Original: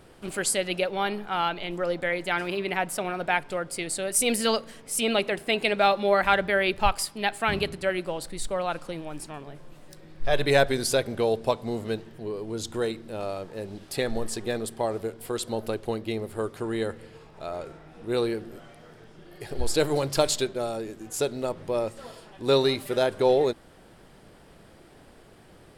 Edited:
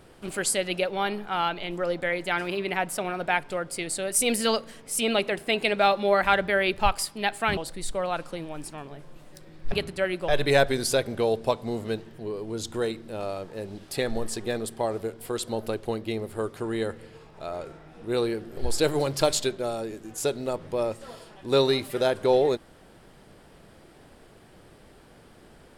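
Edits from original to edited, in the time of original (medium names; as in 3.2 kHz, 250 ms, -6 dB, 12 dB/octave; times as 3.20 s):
7.57–8.13 s: move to 10.28 s
18.57–19.53 s: delete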